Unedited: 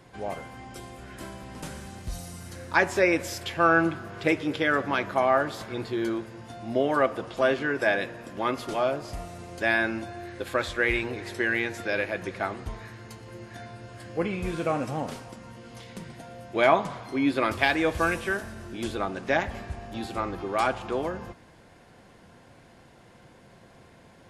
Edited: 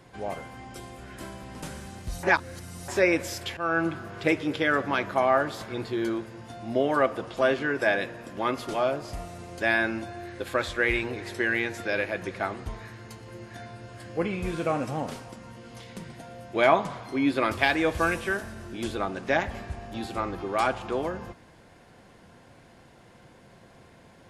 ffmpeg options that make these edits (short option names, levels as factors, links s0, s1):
-filter_complex "[0:a]asplit=4[s0][s1][s2][s3];[s0]atrim=end=2.232[s4];[s1]atrim=start=2.228:end=2.882,asetpts=PTS-STARTPTS,areverse[s5];[s2]atrim=start=2.878:end=3.57,asetpts=PTS-STARTPTS,afade=t=out:st=0.688:d=0.004:c=hsin:silence=0.237137[s6];[s3]atrim=start=3.57,asetpts=PTS-STARTPTS,afade=t=in:d=0.41:silence=0.237137[s7];[s4][s5]acrossfade=d=0.004:c1=hsin:c2=hsin[s8];[s6][s7]concat=n=2:v=0:a=1[s9];[s8][s9]acrossfade=d=0.004:c1=hsin:c2=hsin"